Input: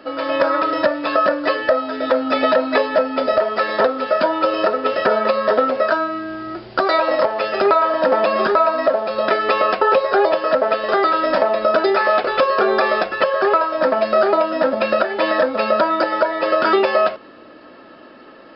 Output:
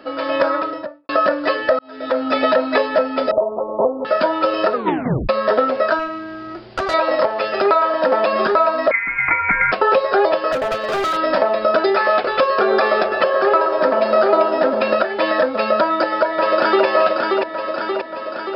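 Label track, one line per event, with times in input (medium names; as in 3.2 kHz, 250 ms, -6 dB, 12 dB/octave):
0.410000	1.090000	studio fade out
1.790000	2.240000	fade in
3.310000	4.050000	steep low-pass 1.1 kHz 96 dB/octave
4.730000	4.730000	tape stop 0.56 s
5.990000	6.940000	valve stage drive 15 dB, bias 0.55
7.610000	8.330000	bass shelf 110 Hz -9.5 dB
8.910000	9.720000	frequency inversion carrier 2.7 kHz
10.520000	11.170000	overload inside the chain gain 17 dB
12.570000	14.950000	feedback echo behind a band-pass 125 ms, feedback 75%, band-pass 590 Hz, level -7.5 dB
15.800000	16.850000	echo throw 580 ms, feedback 65%, level -3.5 dB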